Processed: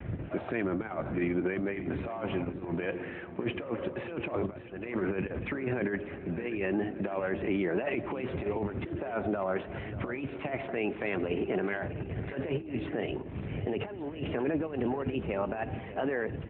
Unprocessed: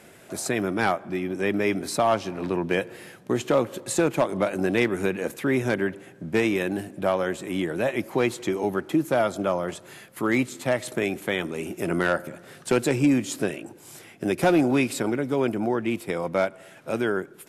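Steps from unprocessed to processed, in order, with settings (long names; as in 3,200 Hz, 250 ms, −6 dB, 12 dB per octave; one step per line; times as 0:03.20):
gliding playback speed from 95% → 117%
wind on the microphone 91 Hz −30 dBFS
Butterworth low-pass 2,800 Hz 36 dB per octave
compressor whose output falls as the input rises −27 dBFS, ratio −0.5
parametric band 140 Hz −5 dB 1.3 octaves
brickwall limiter −20.5 dBFS, peak gain reduction 7.5 dB
parametric band 69 Hz −5 dB 0.32 octaves
pitch vibrato 0.52 Hz 24 cents
repeating echo 592 ms, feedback 56%, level −13 dB
AMR narrowband 12.2 kbit/s 8,000 Hz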